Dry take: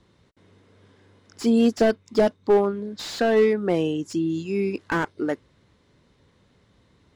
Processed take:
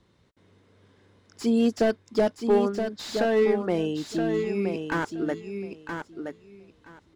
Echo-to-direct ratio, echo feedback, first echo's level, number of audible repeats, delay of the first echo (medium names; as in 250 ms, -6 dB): -6.5 dB, 17%, -6.5 dB, 2, 972 ms